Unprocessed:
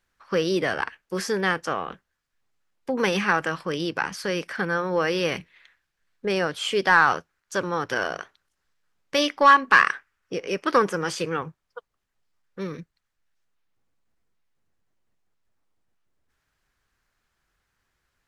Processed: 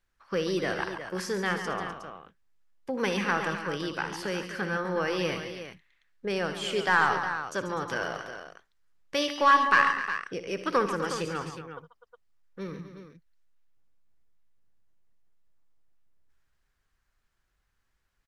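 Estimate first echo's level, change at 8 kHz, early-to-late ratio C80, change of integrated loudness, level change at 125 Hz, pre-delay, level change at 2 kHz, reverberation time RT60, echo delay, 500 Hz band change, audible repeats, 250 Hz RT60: -14.5 dB, -4.5 dB, no reverb, -5.0 dB, -3.5 dB, no reverb, -5.0 dB, no reverb, 60 ms, -5.0 dB, 4, no reverb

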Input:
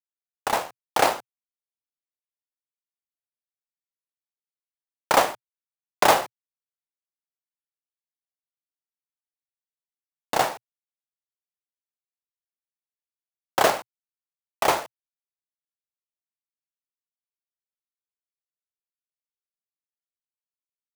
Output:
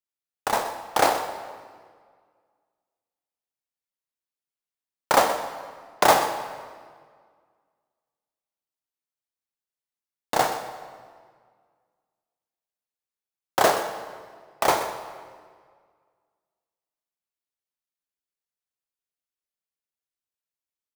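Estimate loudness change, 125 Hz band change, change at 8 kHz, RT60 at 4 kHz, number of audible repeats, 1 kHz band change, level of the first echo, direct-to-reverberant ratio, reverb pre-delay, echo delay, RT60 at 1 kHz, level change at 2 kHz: -0.5 dB, +1.0 dB, +0.5 dB, 1.4 s, 1, +1.0 dB, -13.5 dB, 7.0 dB, 16 ms, 126 ms, 1.8 s, -0.5 dB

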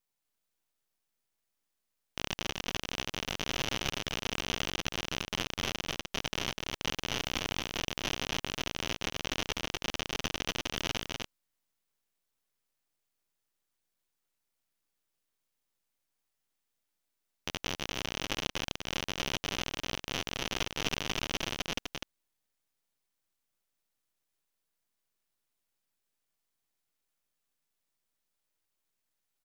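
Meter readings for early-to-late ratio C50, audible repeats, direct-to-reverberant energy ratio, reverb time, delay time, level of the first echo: no reverb, 1, no reverb, no reverb, 250 ms, -4.0 dB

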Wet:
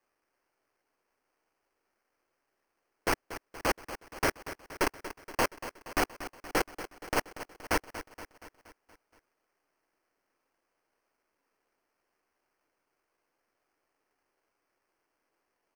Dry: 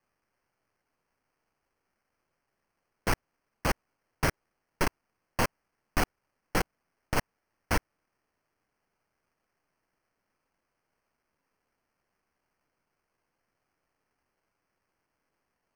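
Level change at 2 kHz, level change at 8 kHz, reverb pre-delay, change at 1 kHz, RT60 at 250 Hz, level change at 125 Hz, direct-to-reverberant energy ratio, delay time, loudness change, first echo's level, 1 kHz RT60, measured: +0.5 dB, +0.5 dB, no reverb, +0.5 dB, no reverb, -9.0 dB, no reverb, 236 ms, -1.0 dB, -13.0 dB, no reverb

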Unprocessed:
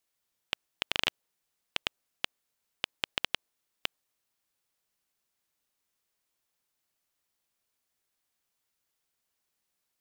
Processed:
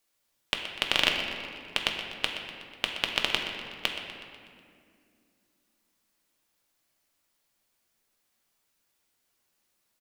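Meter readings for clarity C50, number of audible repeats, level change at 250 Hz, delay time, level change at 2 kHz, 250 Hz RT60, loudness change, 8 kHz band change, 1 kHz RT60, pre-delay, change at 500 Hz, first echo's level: 3.5 dB, 2, +9.0 dB, 123 ms, +7.0 dB, 3.5 s, +6.0 dB, +6.0 dB, 2.0 s, 3 ms, +7.5 dB, -12.0 dB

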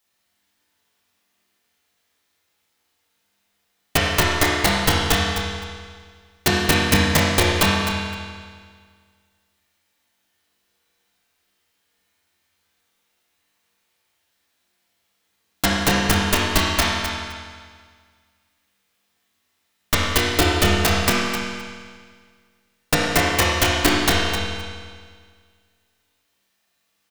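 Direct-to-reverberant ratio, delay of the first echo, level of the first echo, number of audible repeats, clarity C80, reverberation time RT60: -7.0 dB, 258 ms, -8.0 dB, 1, 0.0 dB, 1.8 s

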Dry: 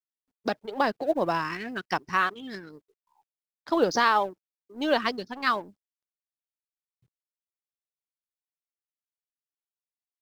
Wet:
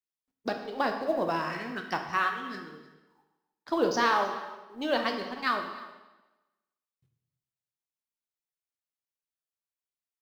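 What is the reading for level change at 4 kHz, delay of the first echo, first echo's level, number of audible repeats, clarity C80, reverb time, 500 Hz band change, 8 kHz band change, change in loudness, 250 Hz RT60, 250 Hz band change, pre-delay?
-2.5 dB, 310 ms, -20.0 dB, 1, 8.0 dB, 1.1 s, -2.5 dB, -2.5 dB, -3.0 dB, 1.1 s, -2.5 dB, 5 ms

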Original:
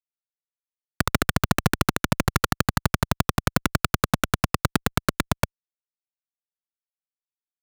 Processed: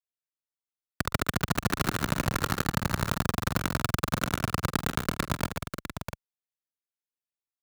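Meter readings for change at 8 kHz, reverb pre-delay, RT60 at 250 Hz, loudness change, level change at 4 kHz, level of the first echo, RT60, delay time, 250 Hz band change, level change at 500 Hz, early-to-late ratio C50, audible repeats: -5.0 dB, no reverb, no reverb, -5.0 dB, -5.0 dB, -18.0 dB, no reverb, 47 ms, -5.0 dB, -5.0 dB, no reverb, 5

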